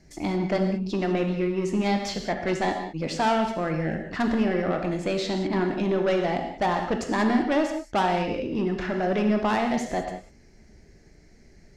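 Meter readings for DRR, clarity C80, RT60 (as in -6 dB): 4.0 dB, 7.5 dB, not exponential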